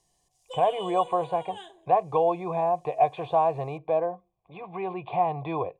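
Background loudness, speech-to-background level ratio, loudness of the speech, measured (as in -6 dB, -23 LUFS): -42.5 LUFS, 15.5 dB, -27.0 LUFS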